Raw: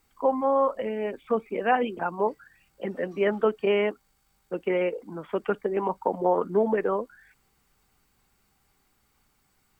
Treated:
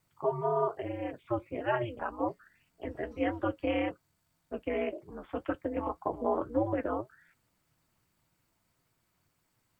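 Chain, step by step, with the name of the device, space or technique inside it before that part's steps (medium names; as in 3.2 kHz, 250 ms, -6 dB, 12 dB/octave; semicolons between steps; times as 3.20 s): alien voice (ring modulator 120 Hz; flange 1.8 Hz, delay 6 ms, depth 4.6 ms, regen -50%)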